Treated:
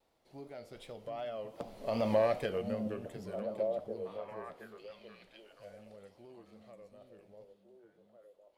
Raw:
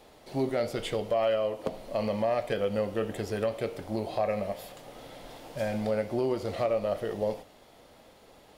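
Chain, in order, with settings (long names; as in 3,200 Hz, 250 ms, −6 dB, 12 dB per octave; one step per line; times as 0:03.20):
source passing by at 0:02.16, 13 m/s, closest 2.5 metres
pitch vibrato 2.6 Hz 84 cents
echo through a band-pass that steps 727 ms, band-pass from 180 Hz, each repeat 1.4 octaves, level −1.5 dB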